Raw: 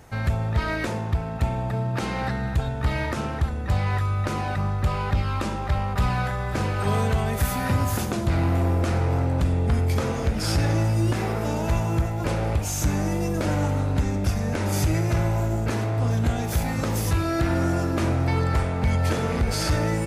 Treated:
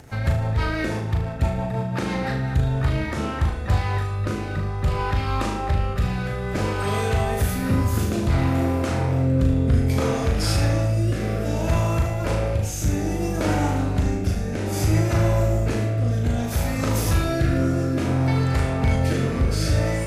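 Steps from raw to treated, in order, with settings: upward compressor, threshold -42 dBFS; rotary speaker horn 6 Hz, later 0.6 Hz, at 2.2; on a send: flutter echo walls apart 6.5 m, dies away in 0.5 s; on the sum: gain +2 dB

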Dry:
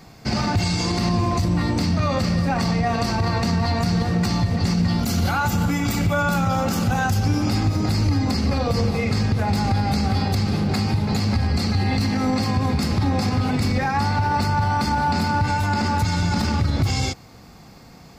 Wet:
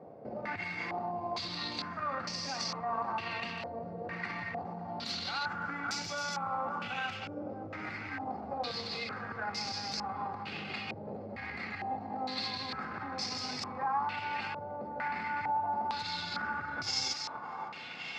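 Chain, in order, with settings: compressor, threshold -27 dBFS, peak gain reduction 11 dB; thinning echo 0.558 s, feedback 66%, high-pass 920 Hz, level -5 dB; limiter -26.5 dBFS, peak gain reduction 8.5 dB; Bessel high-pass 160 Hz, order 2; low shelf 400 Hz -11 dB; stepped low-pass 2.2 Hz 550–5500 Hz

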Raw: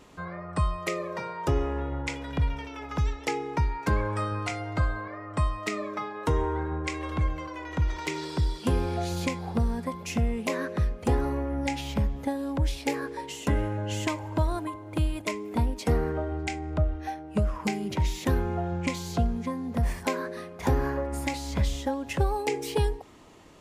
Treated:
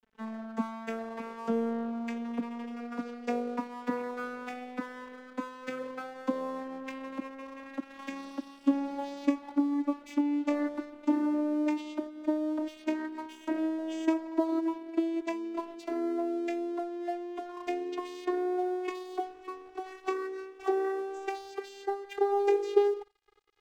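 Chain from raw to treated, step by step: vocoder on a gliding note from A3, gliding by +11 st; crossover distortion -51 dBFS; narrowing echo 84 ms, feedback 40%, band-pass 2700 Hz, level -22.5 dB

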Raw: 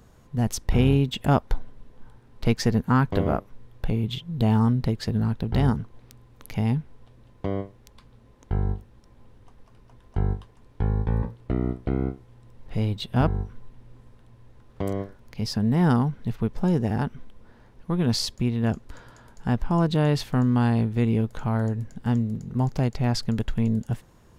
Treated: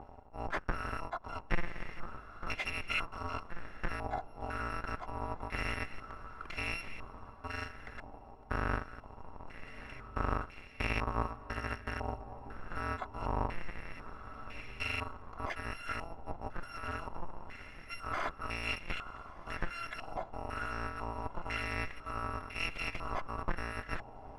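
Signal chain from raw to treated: FFT order left unsorted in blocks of 256 samples; low shelf 260 Hz -8 dB; reverse; compressor 6:1, threshold -33 dBFS, peak gain reduction 17.5 dB; reverse; soft clip -31.5 dBFS, distortion -13 dB; on a send: diffused feedback echo 1.287 s, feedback 57%, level -15 dB; on the sum: stepped low-pass 2 Hz 830–2300 Hz; gain +11 dB

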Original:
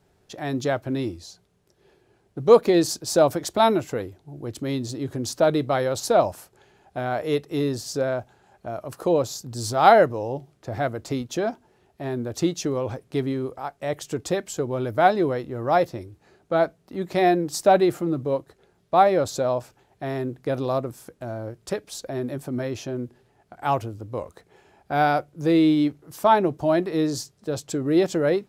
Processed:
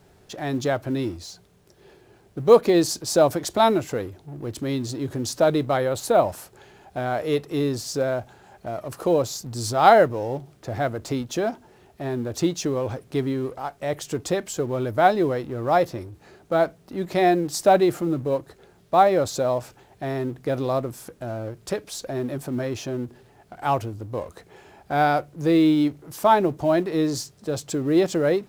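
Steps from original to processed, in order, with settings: G.711 law mismatch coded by mu; 5.77–6.29 bell 5400 Hz -8.5 dB 0.6 oct

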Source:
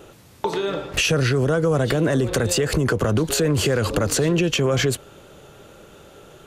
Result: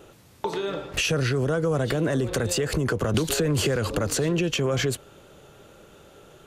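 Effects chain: 3.14–3.76 three-band squash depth 100%; gain -4.5 dB

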